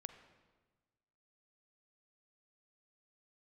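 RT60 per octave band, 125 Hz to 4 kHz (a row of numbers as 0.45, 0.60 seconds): 1.7, 1.5, 1.4, 1.3, 1.2, 1.2 seconds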